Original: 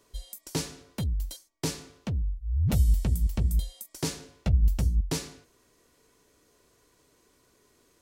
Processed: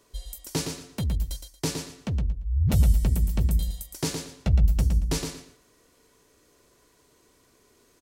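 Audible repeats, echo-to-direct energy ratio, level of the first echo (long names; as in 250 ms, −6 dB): 3, −6.0 dB, −6.0 dB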